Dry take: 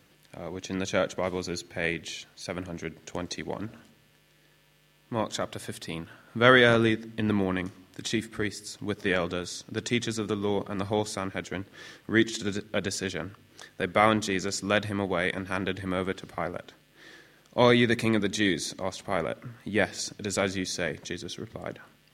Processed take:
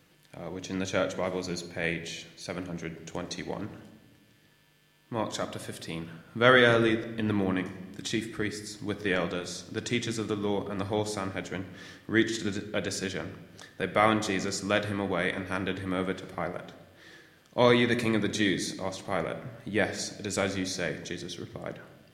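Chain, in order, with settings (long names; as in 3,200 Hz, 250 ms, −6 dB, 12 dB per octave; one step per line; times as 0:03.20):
rectangular room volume 740 cubic metres, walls mixed, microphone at 0.54 metres
level −2 dB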